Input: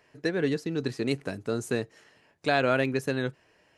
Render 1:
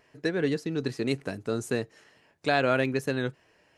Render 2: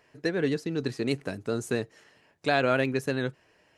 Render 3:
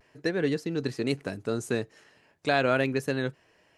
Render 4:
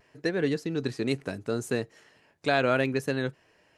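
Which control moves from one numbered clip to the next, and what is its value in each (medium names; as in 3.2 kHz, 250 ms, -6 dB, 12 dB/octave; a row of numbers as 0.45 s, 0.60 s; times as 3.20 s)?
vibrato, rate: 2.4 Hz, 12 Hz, 0.37 Hz, 0.7 Hz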